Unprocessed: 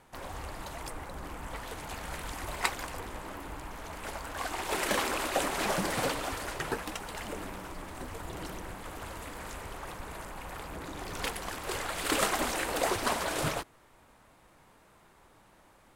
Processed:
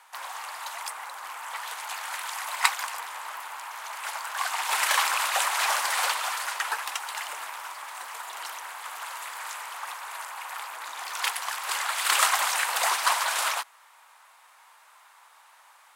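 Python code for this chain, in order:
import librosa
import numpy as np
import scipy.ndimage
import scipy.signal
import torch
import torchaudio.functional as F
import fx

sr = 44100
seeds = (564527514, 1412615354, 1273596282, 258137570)

y = scipy.signal.sosfilt(scipy.signal.cheby1(3, 1.0, 920.0, 'highpass', fs=sr, output='sos'), x)
y = y * 10.0 ** (8.5 / 20.0)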